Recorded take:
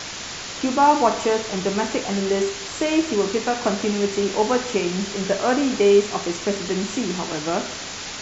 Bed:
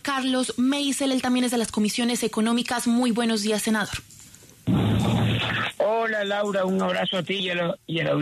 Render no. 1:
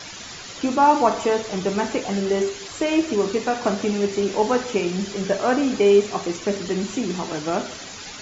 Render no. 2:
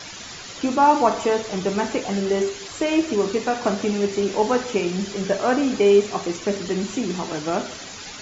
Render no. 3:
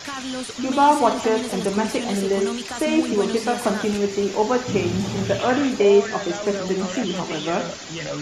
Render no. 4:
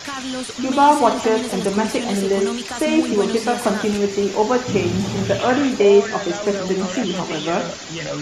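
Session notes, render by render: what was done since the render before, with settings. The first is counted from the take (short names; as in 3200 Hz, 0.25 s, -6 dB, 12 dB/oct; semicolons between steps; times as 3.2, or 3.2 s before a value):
denoiser 9 dB, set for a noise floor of -33 dBFS
nothing audible
add bed -6.5 dB
gain +2.5 dB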